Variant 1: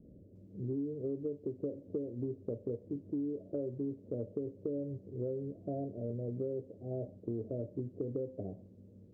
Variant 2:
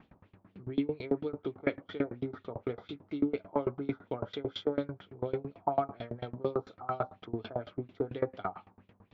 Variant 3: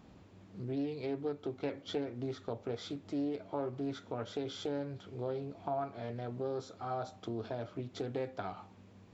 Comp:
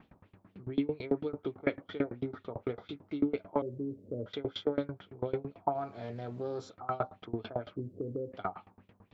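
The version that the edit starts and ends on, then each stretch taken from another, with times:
2
3.62–4.26 from 1
5.75–6.7 from 3
7.76–8.32 from 1

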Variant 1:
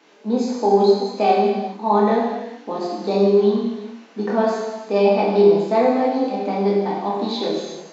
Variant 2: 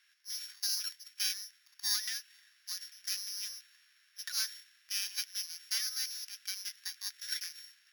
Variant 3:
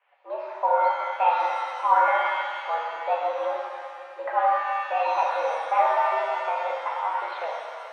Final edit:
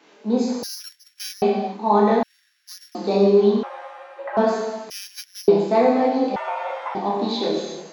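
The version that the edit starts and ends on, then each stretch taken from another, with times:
1
0.63–1.42 from 2
2.23–2.95 from 2
3.63–4.37 from 3
4.9–5.48 from 2
6.36–6.95 from 3

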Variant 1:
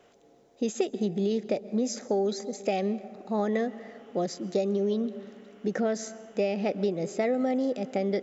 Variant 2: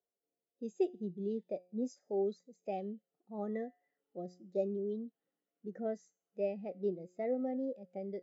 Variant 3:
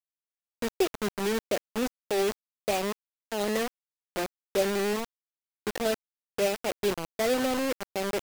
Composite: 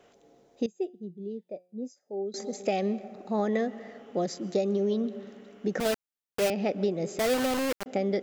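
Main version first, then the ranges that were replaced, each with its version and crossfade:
1
0.66–2.34 from 2
5.8–6.5 from 3
7.19–7.86 from 3

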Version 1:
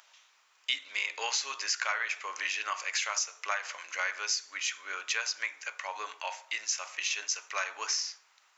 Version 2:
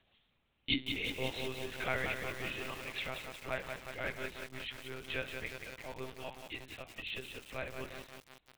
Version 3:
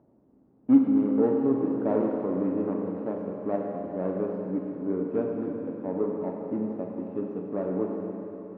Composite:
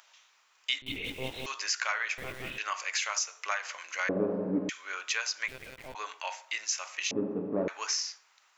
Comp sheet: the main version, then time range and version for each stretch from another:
1
0.82–1.46 from 2
2.18–2.58 from 2
4.09–4.69 from 3
5.48–5.95 from 2
7.11–7.68 from 3

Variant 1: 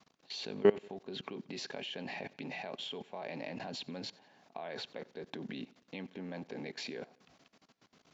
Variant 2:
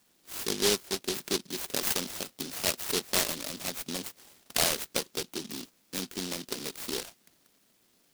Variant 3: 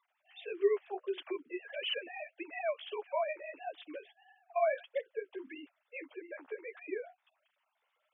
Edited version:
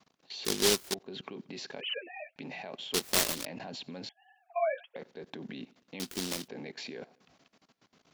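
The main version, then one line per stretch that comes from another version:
1
0.45–0.94 from 2
1.81–2.36 from 3
2.94–3.45 from 2
4.09–4.96 from 3
6–6.48 from 2

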